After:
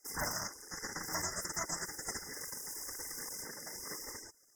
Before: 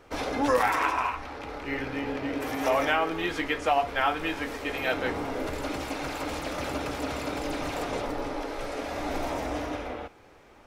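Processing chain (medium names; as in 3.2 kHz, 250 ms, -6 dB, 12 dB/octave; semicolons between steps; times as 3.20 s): spectral gate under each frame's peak -15 dB weak; speed mistake 33 rpm record played at 78 rpm; brick-wall FIR band-stop 2.1–4.9 kHz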